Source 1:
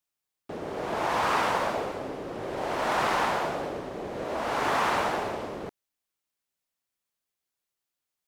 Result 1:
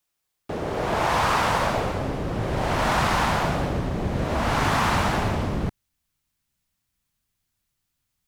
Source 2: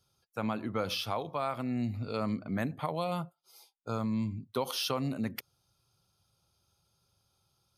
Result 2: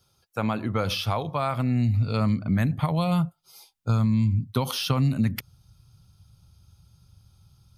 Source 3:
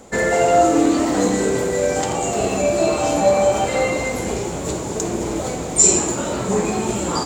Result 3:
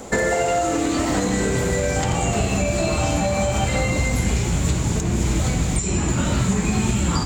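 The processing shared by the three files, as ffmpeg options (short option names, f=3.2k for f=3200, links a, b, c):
-filter_complex "[0:a]alimiter=limit=-11dB:level=0:latency=1:release=312,asubboost=boost=9:cutoff=150,acrossover=split=1600|3200[a][b][c];[a]acompressor=threshold=-27dB:ratio=4[d];[b]acompressor=threshold=-39dB:ratio=4[e];[c]acompressor=threshold=-39dB:ratio=4[f];[d][e][f]amix=inputs=3:normalize=0,volume=7.5dB"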